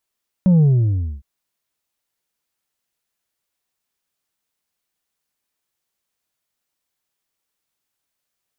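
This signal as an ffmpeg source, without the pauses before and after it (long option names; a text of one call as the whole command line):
ffmpeg -f lavfi -i "aevalsrc='0.316*clip((0.76-t)/0.62,0,1)*tanh(1.5*sin(2*PI*190*0.76/log(65/190)*(exp(log(65/190)*t/0.76)-1)))/tanh(1.5)':duration=0.76:sample_rate=44100" out.wav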